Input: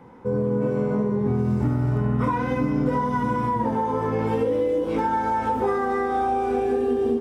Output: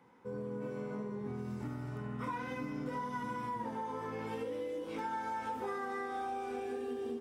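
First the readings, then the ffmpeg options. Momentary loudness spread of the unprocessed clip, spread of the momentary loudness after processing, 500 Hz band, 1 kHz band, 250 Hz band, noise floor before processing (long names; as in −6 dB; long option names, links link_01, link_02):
1 LU, 3 LU, −16.5 dB, −14.5 dB, −17.0 dB, −27 dBFS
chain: -af "highpass=frequency=470:poles=1,equalizer=frequency=640:width=0.51:gain=-7.5,volume=-7dB"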